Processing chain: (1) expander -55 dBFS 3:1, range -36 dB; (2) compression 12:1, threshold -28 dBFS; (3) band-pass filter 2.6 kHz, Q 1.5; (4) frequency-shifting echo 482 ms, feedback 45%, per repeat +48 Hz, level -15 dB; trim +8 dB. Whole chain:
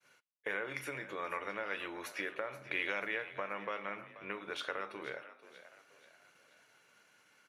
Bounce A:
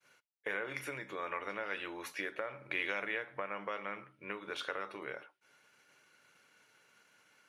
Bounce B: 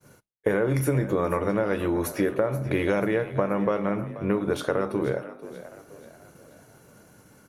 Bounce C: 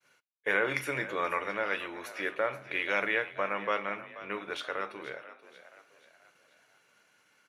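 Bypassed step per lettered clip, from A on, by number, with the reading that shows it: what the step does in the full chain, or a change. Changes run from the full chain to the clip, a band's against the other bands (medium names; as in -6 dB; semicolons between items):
4, echo-to-direct -14.0 dB to none; 3, 125 Hz band +17.0 dB; 2, mean gain reduction 5.5 dB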